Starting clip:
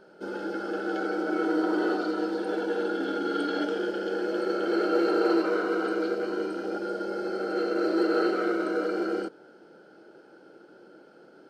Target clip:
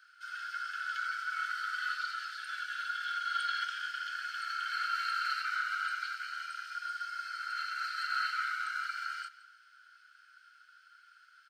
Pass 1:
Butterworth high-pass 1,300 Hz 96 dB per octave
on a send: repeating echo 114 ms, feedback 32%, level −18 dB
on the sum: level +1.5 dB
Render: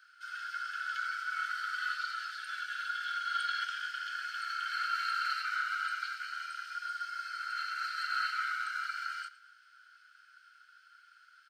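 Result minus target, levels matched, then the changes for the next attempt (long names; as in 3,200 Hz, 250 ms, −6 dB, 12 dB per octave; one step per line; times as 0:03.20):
echo 54 ms early
change: repeating echo 168 ms, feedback 32%, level −18 dB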